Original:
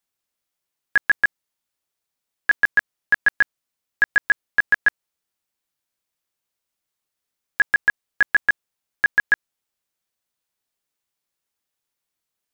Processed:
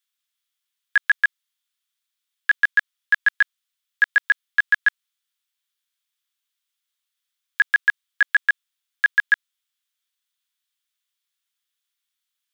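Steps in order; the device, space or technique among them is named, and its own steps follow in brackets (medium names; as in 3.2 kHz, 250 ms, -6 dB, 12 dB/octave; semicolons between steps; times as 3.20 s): headphones lying on a table (high-pass 1.2 kHz 24 dB/octave; peaking EQ 3.4 kHz +8 dB 0.42 oct)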